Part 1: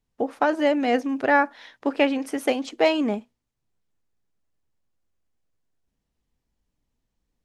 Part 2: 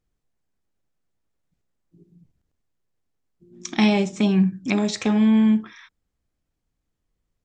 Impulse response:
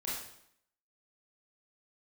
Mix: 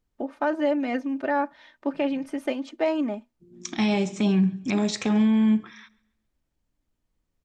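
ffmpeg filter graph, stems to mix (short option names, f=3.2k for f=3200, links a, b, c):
-filter_complex "[0:a]lowpass=f=3.3k:p=1,aecho=1:1:3.3:0.7,volume=-6dB[a];[1:a]volume=-1.5dB,asplit=2[b][c];[c]volume=-23.5dB,aecho=0:1:136|272|408|544|680:1|0.32|0.102|0.0328|0.0105[d];[a][b][d]amix=inputs=3:normalize=0,alimiter=limit=-14.5dB:level=0:latency=1:release=14"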